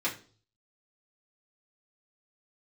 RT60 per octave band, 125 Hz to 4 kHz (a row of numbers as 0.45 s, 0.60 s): 0.80 s, 0.50 s, 0.45 s, 0.35 s, 0.35 s, 0.40 s